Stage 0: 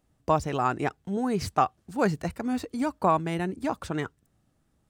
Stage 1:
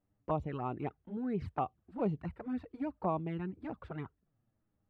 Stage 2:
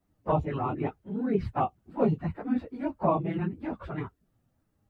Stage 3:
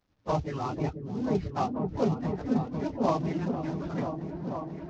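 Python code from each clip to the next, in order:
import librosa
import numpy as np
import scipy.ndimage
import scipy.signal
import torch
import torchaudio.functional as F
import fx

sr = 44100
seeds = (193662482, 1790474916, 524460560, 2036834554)

y1 = fx.env_flanger(x, sr, rest_ms=10.2, full_db=-22.0)
y1 = fx.air_absorb(y1, sr, metres=500.0)
y1 = F.gain(torch.from_numpy(y1), -6.0).numpy()
y2 = fx.phase_scramble(y1, sr, seeds[0], window_ms=50)
y2 = F.gain(torch.from_numpy(y2), 7.5).numpy()
y3 = fx.cvsd(y2, sr, bps=32000)
y3 = fx.echo_opening(y3, sr, ms=490, hz=400, octaves=1, feedback_pct=70, wet_db=-3)
y3 = F.gain(torch.from_numpy(y3), -2.0).numpy()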